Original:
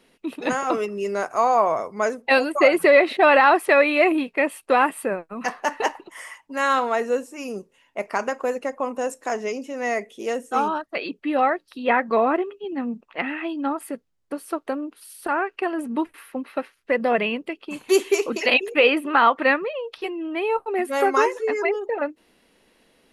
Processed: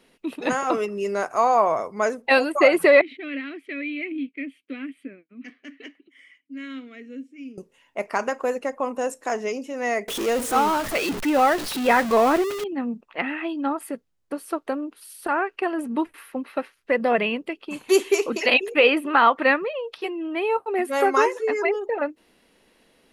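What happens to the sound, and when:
0:03.01–0:07.58: formant filter i
0:10.08–0:12.64: converter with a step at zero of −24.5 dBFS
0:19.93–0:21.67: high-pass filter 110 Hz

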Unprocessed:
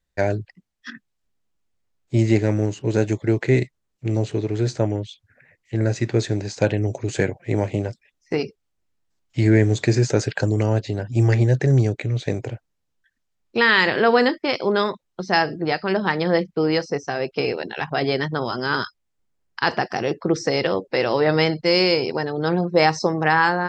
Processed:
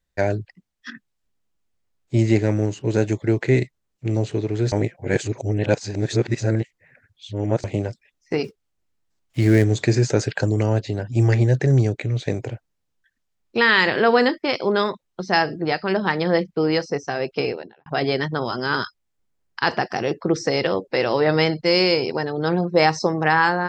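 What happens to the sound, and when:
0:04.72–0:07.64: reverse
0:08.44–0:09.64: gap after every zero crossing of 0.081 ms
0:17.38–0:17.86: fade out and dull

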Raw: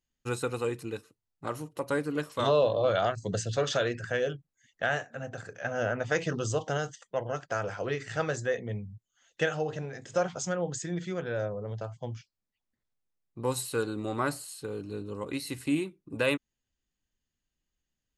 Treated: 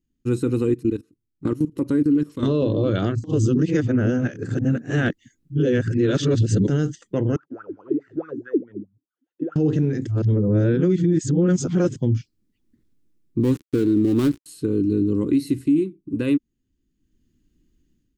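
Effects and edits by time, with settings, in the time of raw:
0:00.74–0:02.43: output level in coarse steps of 19 dB
0:03.24–0:06.68: reverse
0:07.36–0:09.56: LFO wah 4.7 Hz 260–1,500 Hz, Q 14
0:10.07–0:11.96: reverse
0:13.40–0:14.46: gap after every zero crossing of 0.2 ms
whole clip: low shelf with overshoot 460 Hz +13.5 dB, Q 3; automatic gain control; brickwall limiter −8 dBFS; level −3.5 dB

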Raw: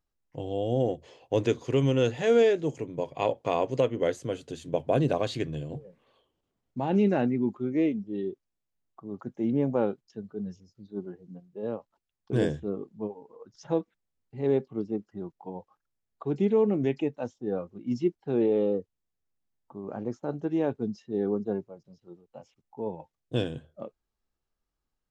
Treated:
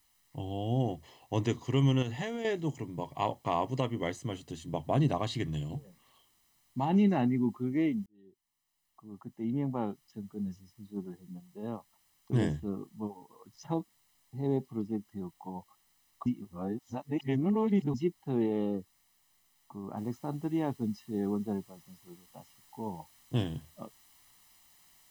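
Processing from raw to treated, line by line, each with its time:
0:02.02–0:02.45: downward compressor, threshold −26 dBFS
0:05.48–0:06.85: high-shelf EQ 2,400 Hz +8 dB
0:08.06–0:10.41: fade in
0:13.74–0:14.68: flat-topped bell 1,900 Hz −10 dB
0:16.26–0:17.94: reverse
0:19.97: noise floor change −69 dB −61 dB
whole clip: comb filter 1 ms, depth 67%; level −3 dB

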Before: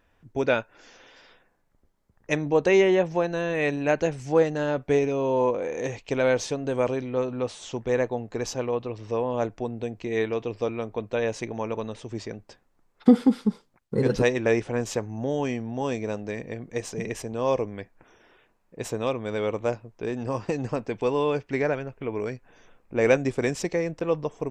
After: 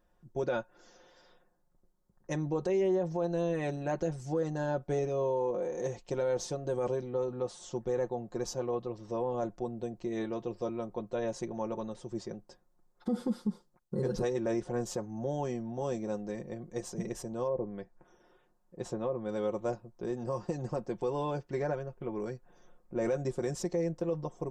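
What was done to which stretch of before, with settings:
0:17.46–0:19.29: treble cut that deepens with the level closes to 800 Hz, closed at −20.5 dBFS
whole clip: parametric band 2,400 Hz −13.5 dB 1.1 octaves; comb filter 5.6 ms, depth 71%; brickwall limiter −17 dBFS; level −6 dB

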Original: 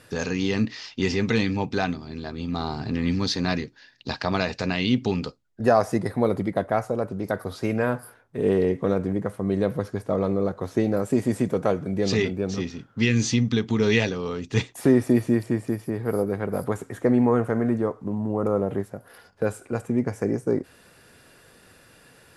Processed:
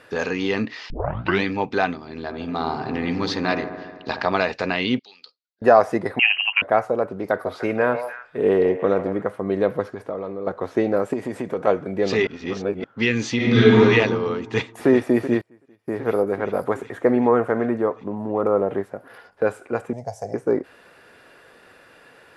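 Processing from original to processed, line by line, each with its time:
0:00.90: tape start 0.53 s
0:02.09–0:04.26: delay with a low-pass on its return 74 ms, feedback 74%, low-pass 1,400 Hz, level −9 dB
0:04.99–0:05.62: resonant band-pass 4,400 Hz, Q 4.4
0:06.19–0:06.62: voice inversion scrambler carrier 3,000 Hz
0:07.14–0:09.22: echo through a band-pass that steps 148 ms, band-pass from 730 Hz, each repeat 1.4 octaves, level −6 dB
0:09.83–0:10.47: downward compressor 12 to 1, threshold −27 dBFS
0:11.13–0:11.67: downward compressor 3 to 1, threshold −24 dBFS
0:12.27–0:12.84: reverse
0:13.36–0:13.77: thrown reverb, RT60 1.6 s, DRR −10 dB
0:14.41–0:14.89: delay throw 380 ms, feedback 75%, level −11 dB
0:15.41–0:15.88: gate with flip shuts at −31 dBFS, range −28 dB
0:19.93–0:20.34: drawn EQ curve 130 Hz 0 dB, 330 Hz −26 dB, 690 Hz +6 dB, 1,200 Hz −18 dB, 2,400 Hz −17 dB, 5,500 Hz +10 dB, 11,000 Hz +4 dB
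whole clip: bass and treble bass −13 dB, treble −14 dB; level +6 dB

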